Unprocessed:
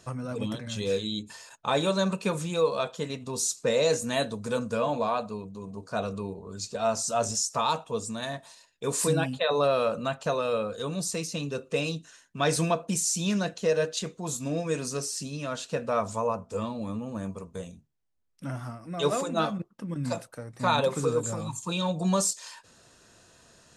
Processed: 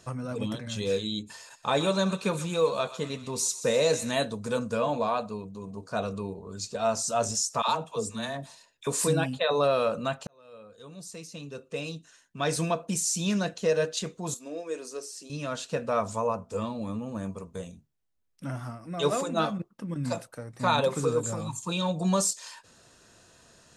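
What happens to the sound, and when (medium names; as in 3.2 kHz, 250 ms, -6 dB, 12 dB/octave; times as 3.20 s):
1.37–4.11 s: thinning echo 126 ms, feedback 68%, high-pass 1 kHz, level -12.5 dB
7.62–8.87 s: phase dispersion lows, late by 67 ms, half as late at 620 Hz
10.27–13.32 s: fade in
14.34–15.30 s: ladder high-pass 300 Hz, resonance 40%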